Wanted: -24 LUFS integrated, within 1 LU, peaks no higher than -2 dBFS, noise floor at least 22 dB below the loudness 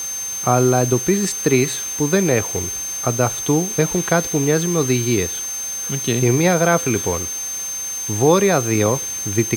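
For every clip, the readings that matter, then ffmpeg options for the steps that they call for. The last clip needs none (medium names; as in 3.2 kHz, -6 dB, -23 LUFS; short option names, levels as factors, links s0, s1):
steady tone 6.3 kHz; tone level -24 dBFS; noise floor -27 dBFS; noise floor target -41 dBFS; loudness -18.5 LUFS; peak level -1.5 dBFS; loudness target -24.0 LUFS
-> -af "bandreject=f=6300:w=30"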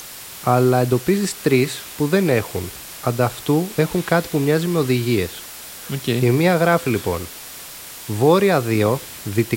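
steady tone not found; noise floor -36 dBFS; noise floor target -42 dBFS
-> -af "afftdn=nr=6:nf=-36"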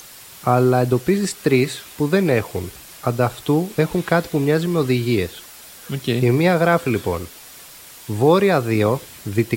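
noise floor -42 dBFS; loudness -19.5 LUFS; peak level -2.5 dBFS; loudness target -24.0 LUFS
-> -af "volume=0.596"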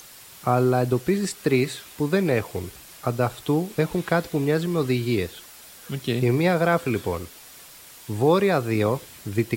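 loudness -24.0 LUFS; peak level -7.0 dBFS; noise floor -46 dBFS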